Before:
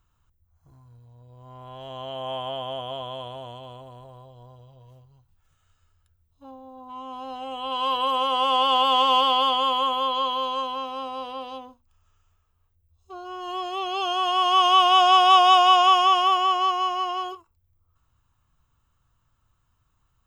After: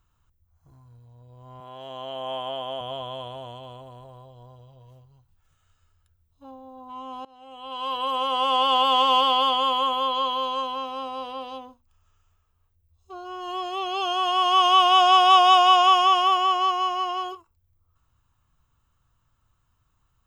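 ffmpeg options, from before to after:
ffmpeg -i in.wav -filter_complex "[0:a]asettb=1/sr,asplit=3[link_01][link_02][link_03];[link_01]atrim=end=1.604[link_04];[link_02]atrim=start=1.6:end=2.81,asetpts=PTS-STARTPTS,afade=type=in:duration=0.004:curve=qsin,afade=type=out:start_time=1.206:duration=0.004:curve=qsin,highpass=180[link_05];[link_03]atrim=start=2.806[link_06];[link_04][link_05]acrossfade=duration=0.004:curve1=hsin:curve2=qsin[link_07];[link_07][link_06]acrossfade=duration=0.004:curve1=qsin:curve2=hsin,asplit=2[link_08][link_09];[link_08]atrim=end=7.25,asetpts=PTS-STARTPTS,afade=type=out:start_time=7.246:duration=0.004:curve=hsin:silence=0.0707946[link_10];[link_09]atrim=start=7.25,asetpts=PTS-STARTPTS,afade=type=in:duration=1.65:curve=qsin:silence=0.0707946[link_11];[link_10][link_11]concat=n=2:v=0:a=1" out.wav

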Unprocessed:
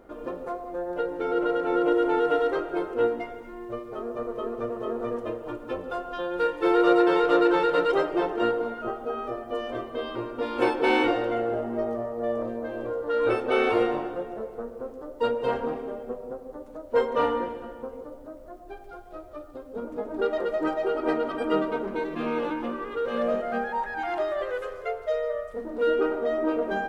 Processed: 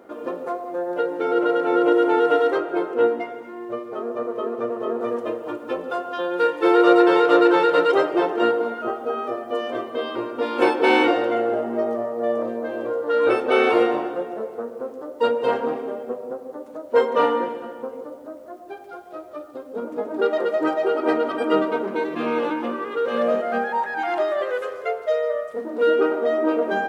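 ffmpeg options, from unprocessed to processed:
ffmpeg -i in.wav -filter_complex "[0:a]asettb=1/sr,asplit=3[link_01][link_02][link_03];[link_01]atrim=end=2.584[link_04];[link_02]atrim=start=2.58:end=5.01,asetpts=PTS-STARTPTS,afade=type=in:duration=0.004:curve=qsin,afade=type=out:start_time=2.426:duration=0.004:curve=qsin,highshelf=frequency=4100:gain=-5.5[link_05];[link_03]atrim=start=5.006[link_06];[link_04][link_05]acrossfade=duration=0.004:curve1=hsin:curve2=qsin[link_07];[link_07][link_06]acrossfade=duration=0.004:curve1=qsin:curve2=hsin,highpass=210,volume=5.5dB" out.wav

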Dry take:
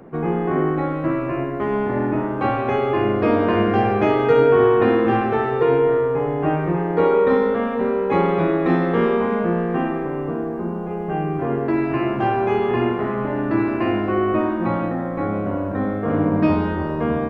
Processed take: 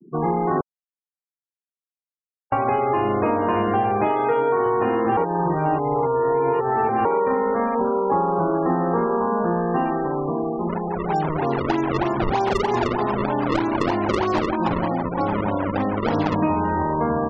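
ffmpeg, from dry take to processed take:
ffmpeg -i in.wav -filter_complex "[0:a]asettb=1/sr,asplit=3[link_01][link_02][link_03];[link_01]atrim=end=4.084[link_04];[link_02]atrim=start=4.08:end=4.66,asetpts=PTS-STARTPTS,afade=type=in:duration=0.004:curve=qsin,afade=type=out:start_time=0.576:duration=0.004:curve=qsin,highpass=frequency=240:poles=1[link_05];[link_03]atrim=start=4.656[link_06];[link_04][link_05]acrossfade=duration=0.004:curve1=hsin:curve2=qsin[link_07];[link_07][link_06]acrossfade=duration=0.004:curve1=qsin:curve2=hsin,asettb=1/sr,asplit=3[link_08][link_09][link_10];[link_08]atrim=end=7.754[link_11];[link_09]atrim=start=7.75:end=9.45,asetpts=PTS-STARTPTS,afade=type=in:duration=0.004:curve=qsin,afade=type=out:start_time=1.696:duration=0.004:curve=qsin,lowpass=frequency=1600:width=0.5412,lowpass=frequency=1600:width=1.3066[link_12];[link_10]atrim=start=9.446[link_13];[link_11][link_12]acrossfade=duration=0.004:curve1=hsin:curve2=qsin[link_14];[link_14][link_13]acrossfade=duration=0.004:curve1=qsin:curve2=hsin,asplit=3[link_15][link_16][link_17];[link_15]afade=type=out:start_time=10.68:duration=0.02[link_18];[link_16]acrusher=samples=32:mix=1:aa=0.000001:lfo=1:lforange=51.2:lforate=3.2,afade=type=in:start_time=10.68:duration=0.02,afade=type=out:start_time=16.34:duration=0.02[link_19];[link_17]afade=type=in:start_time=16.34:duration=0.02[link_20];[link_18][link_19][link_20]amix=inputs=3:normalize=0,asplit=5[link_21][link_22][link_23][link_24][link_25];[link_21]atrim=end=0.61,asetpts=PTS-STARTPTS,afade=type=out:start_time=0.606:duration=0.004:curve=hsin[link_26];[link_22]atrim=start=0.61:end=2.52,asetpts=PTS-STARTPTS,volume=0[link_27];[link_23]atrim=start=2.52:end=5.172,asetpts=PTS-STARTPTS,afade=type=in:duration=0.004:curve=hsin[link_28];[link_24]atrim=start=5.168:end=7.052,asetpts=PTS-STARTPTS,areverse[link_29];[link_25]atrim=start=7.048[link_30];[link_26][link_27][link_28]concat=n=3:v=0:a=1[link_31];[link_31][link_29]acrossfade=duration=0.004:curve1=hsin:curve2=hsin[link_32];[link_32][link_30]acrossfade=duration=0.004:curve1=hsin:curve2=hsin,afftfilt=real='re*gte(hypot(re,im),0.0447)':imag='im*gte(hypot(re,im),0.0447)':win_size=1024:overlap=0.75,equalizer=frequency=910:width=2.3:gain=10.5,acompressor=threshold=-17dB:ratio=6" out.wav

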